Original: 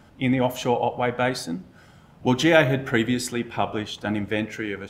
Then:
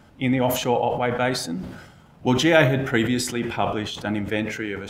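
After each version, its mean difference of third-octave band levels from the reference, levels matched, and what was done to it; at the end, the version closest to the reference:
2.5 dB: level that may fall only so fast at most 59 dB per second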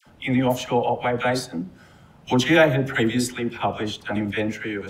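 4.0 dB: all-pass dispersion lows, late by 67 ms, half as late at 1,100 Hz
level +1 dB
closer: first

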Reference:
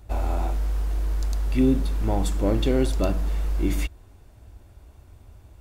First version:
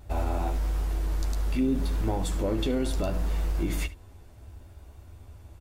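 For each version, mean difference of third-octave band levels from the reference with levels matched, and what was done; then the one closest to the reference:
4.0 dB: brickwall limiter −19 dBFS, peak gain reduction 9.5 dB
pitch vibrato 0.68 Hz 17 cents
on a send: ambience of single reflections 12 ms −7 dB, 75 ms −17.5 dB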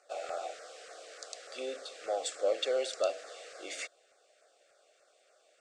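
11.0 dB: Chebyshev band-pass filter 500–8,200 Hz, order 4
auto-filter notch saw down 3.4 Hz 770–3,600 Hz
Butterworth band-reject 940 Hz, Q 2.2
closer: first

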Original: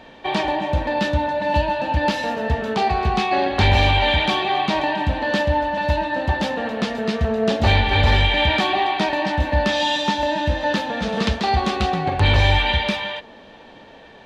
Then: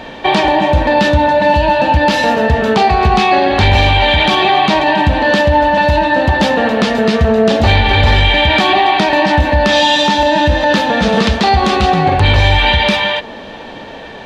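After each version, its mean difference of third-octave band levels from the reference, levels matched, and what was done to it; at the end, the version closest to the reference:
2.0 dB: in parallel at −3 dB: downward compressor, threshold −28 dBFS, peak gain reduction 15 dB
on the sum: boost into a limiter +10.5 dB
level −1 dB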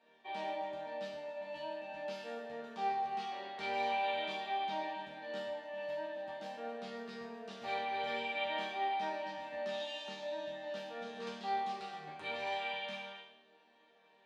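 6.0 dB: high-pass filter 290 Hz 12 dB per octave
resonators tuned to a chord D#3 major, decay 0.74 s
level −2 dB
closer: first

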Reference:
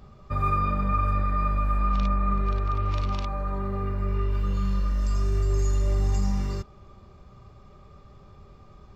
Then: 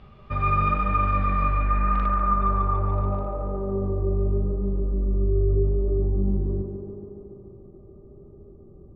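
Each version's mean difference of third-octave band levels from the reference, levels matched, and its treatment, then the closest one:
7.5 dB: low-pass filter sweep 2,900 Hz → 360 Hz, 0:01.41–0:03.83
on a send: tape delay 143 ms, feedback 86%, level −4.5 dB, low-pass 2,300 Hz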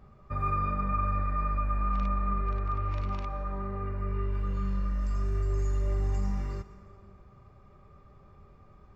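2.0 dB: high shelf with overshoot 2,700 Hz −6 dB, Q 1.5
dense smooth reverb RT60 2.1 s, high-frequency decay 0.7×, pre-delay 105 ms, DRR 13.5 dB
level −5.5 dB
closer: second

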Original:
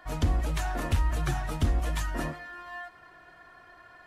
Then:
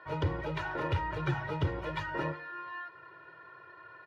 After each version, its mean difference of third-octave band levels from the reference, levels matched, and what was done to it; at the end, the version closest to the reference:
5.5 dB: high-pass filter 110 Hz 24 dB per octave
high-frequency loss of the air 310 metres
comb filter 2.1 ms, depth 93%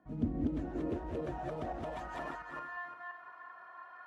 8.5 dB: feedback delay that plays each chunk backwards 173 ms, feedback 43%, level 0 dB
dynamic equaliser 1,000 Hz, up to −5 dB, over −45 dBFS, Q 1
band-pass filter sweep 210 Hz → 1,100 Hz, 0:00.05–0:02.55
level +2.5 dB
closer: first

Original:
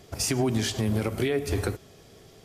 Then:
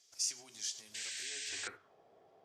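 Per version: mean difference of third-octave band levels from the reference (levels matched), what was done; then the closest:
12.0 dB: band-pass filter sweep 6,100 Hz → 750 Hz, 0:01.28–0:01.97
flanger 0.82 Hz, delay 9.9 ms, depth 5.6 ms, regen −72%
sound drawn into the spectrogram noise, 0:00.94–0:01.68, 1,500–8,600 Hz −44 dBFS
level +1 dB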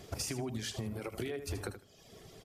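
4.5 dB: reverb reduction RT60 0.8 s
downward compressor 10 to 1, threshold −35 dBFS, peak gain reduction 13 dB
repeating echo 78 ms, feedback 19%, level −10.5 dB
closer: second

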